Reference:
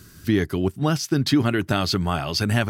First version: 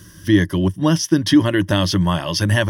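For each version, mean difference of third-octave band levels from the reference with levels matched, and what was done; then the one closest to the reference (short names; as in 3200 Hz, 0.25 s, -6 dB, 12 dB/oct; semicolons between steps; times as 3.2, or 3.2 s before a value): 3.0 dB: ripple EQ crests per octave 1.2, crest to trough 12 dB; gain +2.5 dB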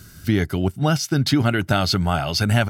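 1.5 dB: comb 1.4 ms, depth 36%; gain +2 dB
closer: second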